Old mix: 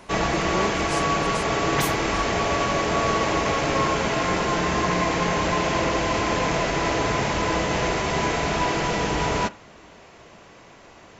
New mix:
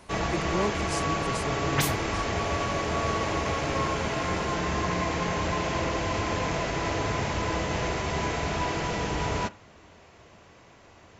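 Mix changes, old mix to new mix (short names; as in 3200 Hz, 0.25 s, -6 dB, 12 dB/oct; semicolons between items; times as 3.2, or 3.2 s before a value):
first sound -6.0 dB; master: add bell 86 Hz +9 dB 0.78 oct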